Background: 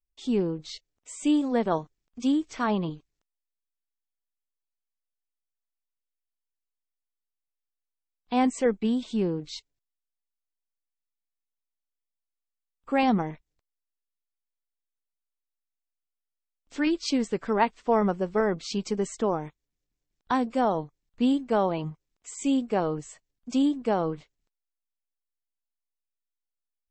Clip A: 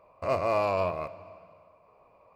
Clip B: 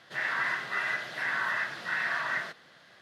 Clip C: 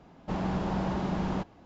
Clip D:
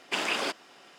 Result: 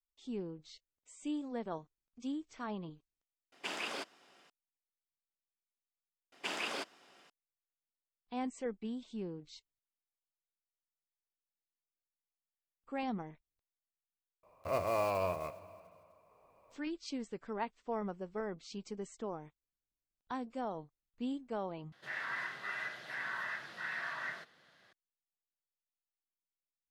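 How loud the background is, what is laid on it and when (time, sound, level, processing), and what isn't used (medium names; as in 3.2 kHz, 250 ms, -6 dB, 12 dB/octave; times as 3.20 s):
background -15 dB
3.52 s: replace with D -10.5 dB
6.32 s: replace with D -9 dB
14.43 s: add A -6.5 dB + block-companded coder 5-bit
21.92 s: replace with B -9.5 dB
not used: C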